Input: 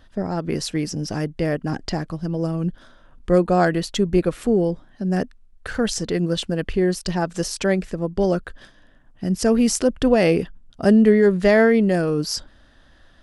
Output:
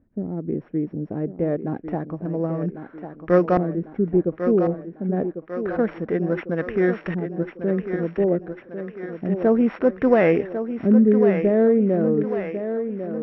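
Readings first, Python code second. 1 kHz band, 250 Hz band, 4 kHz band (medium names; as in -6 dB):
-2.5 dB, -1.0 dB, under -20 dB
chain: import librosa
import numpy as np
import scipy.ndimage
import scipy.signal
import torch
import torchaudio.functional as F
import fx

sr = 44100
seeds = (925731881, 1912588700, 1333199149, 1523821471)

y = np.r_[np.sort(x[:len(x) // 8 * 8].reshape(-1, 8), axis=1).ravel(), x[len(x) // 8 * 8:]]
y = fx.weighting(y, sr, curve='D')
y = fx.filter_lfo_lowpass(y, sr, shape='saw_up', hz=0.28, low_hz=270.0, high_hz=1600.0, q=1.0)
y = fx.high_shelf_res(y, sr, hz=3000.0, db=-13.5, q=1.5)
y = fx.echo_thinned(y, sr, ms=1098, feedback_pct=59, hz=190.0, wet_db=-8)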